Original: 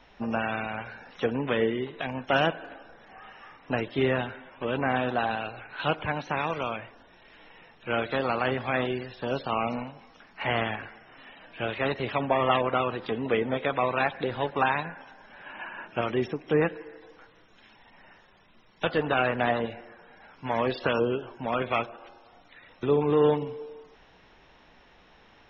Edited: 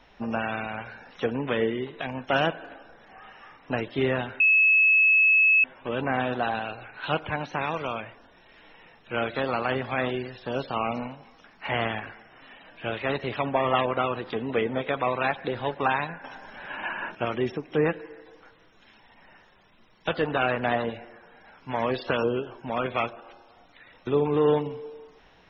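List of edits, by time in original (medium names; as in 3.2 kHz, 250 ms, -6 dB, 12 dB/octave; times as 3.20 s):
4.40 s: add tone 2.59 kHz -15.5 dBFS 1.24 s
15.00–15.91 s: gain +7 dB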